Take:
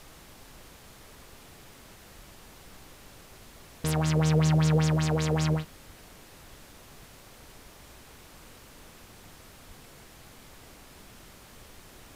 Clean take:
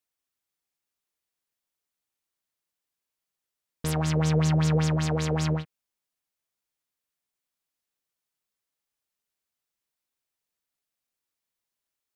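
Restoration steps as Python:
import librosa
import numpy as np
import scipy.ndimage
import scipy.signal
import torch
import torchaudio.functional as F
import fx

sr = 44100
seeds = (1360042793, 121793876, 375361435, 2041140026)

y = fx.highpass(x, sr, hz=140.0, slope=24, at=(2.15, 2.27), fade=0.02)
y = fx.highpass(y, sr, hz=140.0, slope=24, at=(5.86, 5.98), fade=0.02)
y = fx.highpass(y, sr, hz=140.0, slope=24, at=(9.67, 9.79), fade=0.02)
y = fx.noise_reduce(y, sr, print_start_s=7.05, print_end_s=7.55, reduce_db=30.0)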